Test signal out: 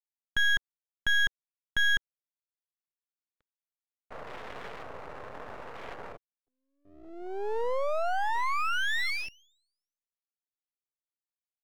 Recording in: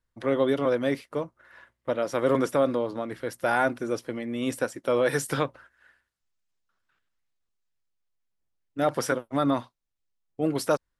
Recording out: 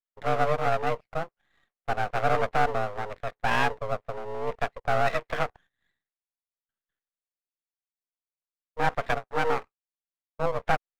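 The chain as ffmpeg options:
-af "highpass=f=230:t=q:w=0.5412,highpass=f=230:t=q:w=1.307,lowpass=f=2100:t=q:w=0.5176,lowpass=f=2100:t=q:w=0.7071,lowpass=f=2100:t=q:w=1.932,afreqshift=190,afwtdn=0.01,aeval=exprs='max(val(0),0)':c=same,volume=1.5"

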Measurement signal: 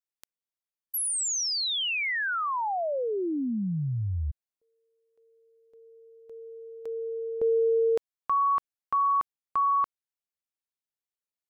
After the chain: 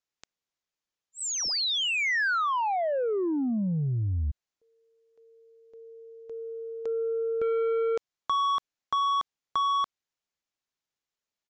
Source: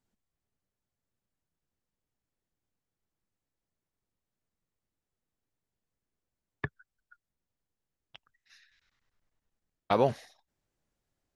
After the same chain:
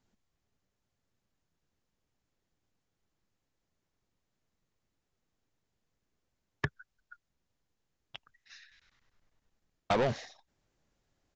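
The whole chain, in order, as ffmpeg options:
-filter_complex "[0:a]aresample=16000,asoftclip=type=tanh:threshold=0.0501,aresample=44100,acrossover=split=2000|4000[s0][s1][s2];[s0]acompressor=threshold=0.0251:ratio=4[s3];[s1]acompressor=threshold=0.0112:ratio=4[s4];[s2]acompressor=threshold=0.0112:ratio=4[s5];[s3][s4][s5]amix=inputs=3:normalize=0,volume=2"

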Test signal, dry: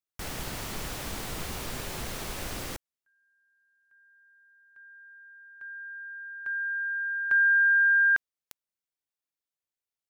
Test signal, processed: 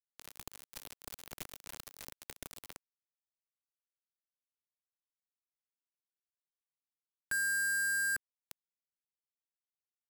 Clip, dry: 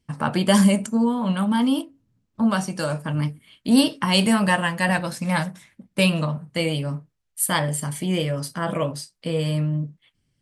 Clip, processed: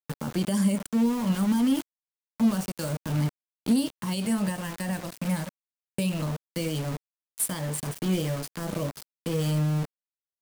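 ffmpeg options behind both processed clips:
-filter_complex "[0:a]aeval=exprs='val(0)*gte(abs(val(0)),0.0473)':c=same,alimiter=limit=0.224:level=0:latency=1:release=460,acrossover=split=440|5300[s0][s1][s2];[s1]acompressor=threshold=0.0282:ratio=6:attack=0.1:release=127:knee=2.83:detection=peak[s3];[s0][s3][s2]amix=inputs=3:normalize=0,volume=0.841"

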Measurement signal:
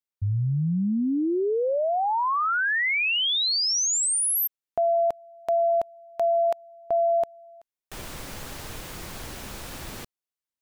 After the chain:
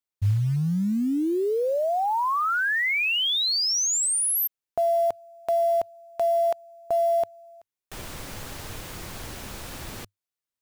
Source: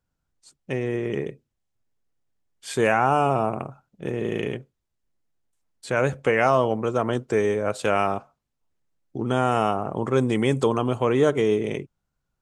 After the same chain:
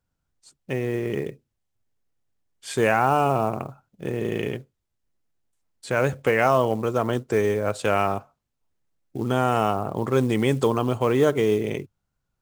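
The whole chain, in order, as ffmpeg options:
-af "equalizer=f=100:t=o:w=0.3:g=4.5,acrusher=bits=7:mode=log:mix=0:aa=0.000001"

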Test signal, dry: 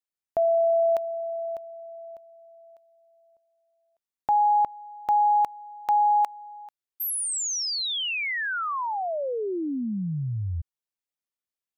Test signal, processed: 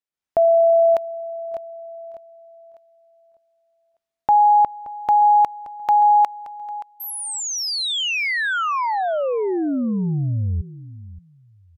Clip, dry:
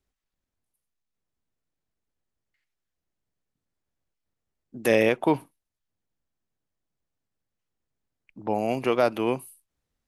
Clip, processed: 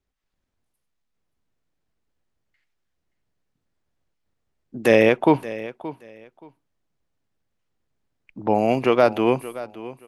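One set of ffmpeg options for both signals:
-af "highshelf=f=7800:g=-12,dynaudnorm=f=120:g=3:m=2.24,aecho=1:1:575|1150:0.158|0.0317"

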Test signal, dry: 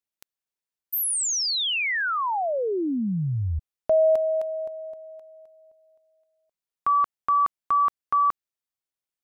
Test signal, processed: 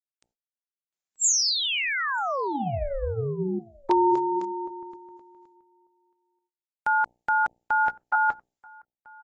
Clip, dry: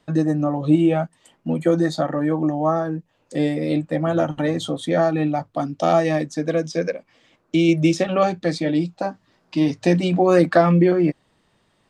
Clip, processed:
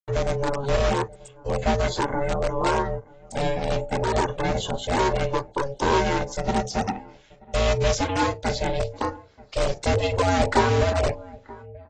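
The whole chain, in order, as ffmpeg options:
-filter_complex "[0:a]bandreject=f=60:t=h:w=6,bandreject=f=120:t=h:w=6,bandreject=f=180:t=h:w=6,bandreject=f=240:t=h:w=6,bandreject=f=300:t=h:w=6,bandreject=f=360:t=h:w=6,bandreject=f=420:t=h:w=6,bandreject=f=480:t=h:w=6,bandreject=f=540:t=h:w=6,bandreject=f=600:t=h:w=6,agate=range=0.00141:threshold=0.00282:ratio=16:release=249:detection=rms,equalizer=f=7700:t=o:w=0.76:g=6.5,asplit=2[s0][s1];[s1]adelay=932.9,volume=0.0631,highshelf=f=4000:g=-21[s2];[s0][s2]amix=inputs=2:normalize=0,asplit=2[s3][s4];[s4]aeval=exprs='(mod(5.01*val(0)+1,2)-1)/5.01':c=same,volume=0.531[s5];[s3][s5]amix=inputs=2:normalize=0,aeval=exprs='val(0)*sin(2*PI*280*n/s)':c=same,volume=0.75" -ar 24000 -c:a aac -b:a 24k

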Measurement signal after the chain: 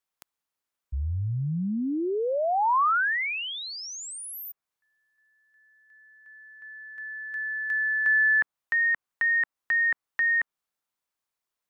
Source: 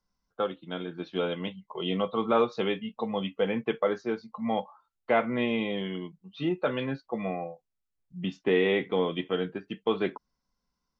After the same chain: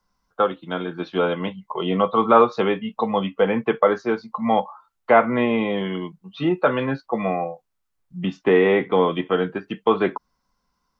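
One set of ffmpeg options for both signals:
-filter_complex "[0:a]equalizer=f=1100:t=o:w=1.3:g=6.5,acrossover=split=370|2200[s0][s1][s2];[s2]acompressor=threshold=0.00562:ratio=6[s3];[s0][s1][s3]amix=inputs=3:normalize=0,volume=2.24"

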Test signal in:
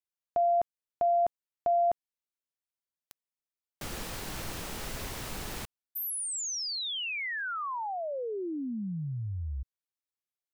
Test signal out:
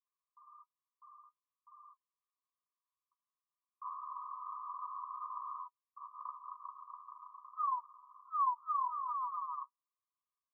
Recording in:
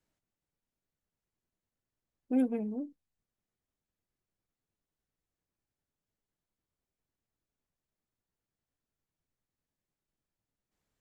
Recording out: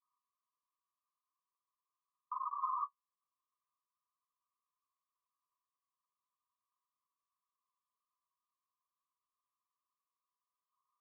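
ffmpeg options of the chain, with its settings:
-af "aeval=exprs='(mod(53.1*val(0)+1,2)-1)/53.1':c=same,flanger=delay=5.3:depth=9.5:regen=-32:speed=1.2:shape=sinusoidal,asuperpass=centerf=1100:order=20:qfactor=3.9,volume=6.31"

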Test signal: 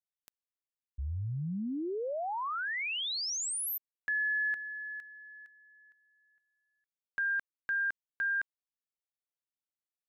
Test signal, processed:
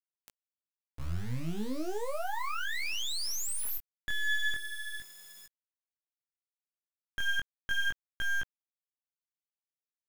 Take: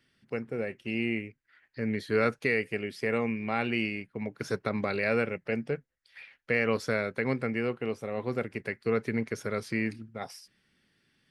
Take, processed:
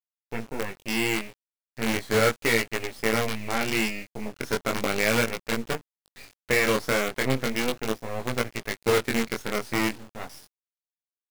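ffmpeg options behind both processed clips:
-af "acrusher=bits=5:dc=4:mix=0:aa=0.000001,flanger=delay=17:depth=7.2:speed=0.36,volume=2.24"

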